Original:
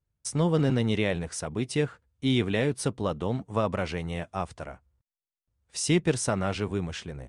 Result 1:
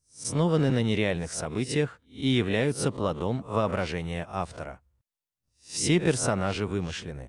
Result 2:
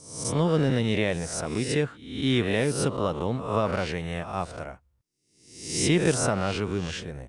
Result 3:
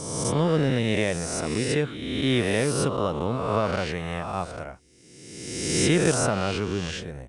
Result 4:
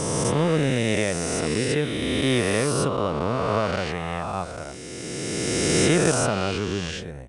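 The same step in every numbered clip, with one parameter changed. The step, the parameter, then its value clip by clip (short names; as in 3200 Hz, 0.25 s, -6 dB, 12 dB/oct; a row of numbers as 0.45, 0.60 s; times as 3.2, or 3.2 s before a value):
spectral swells, rising 60 dB in: 0.3, 0.68, 1.44, 3.17 s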